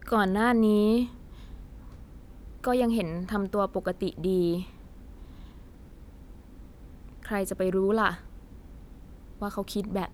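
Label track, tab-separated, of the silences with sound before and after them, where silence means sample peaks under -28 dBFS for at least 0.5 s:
1.050000	2.640000	silence
4.610000	7.250000	silence
8.140000	9.420000	silence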